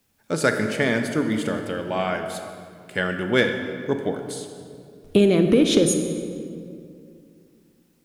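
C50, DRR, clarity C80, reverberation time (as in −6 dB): 6.5 dB, 5.5 dB, 7.5 dB, 2.4 s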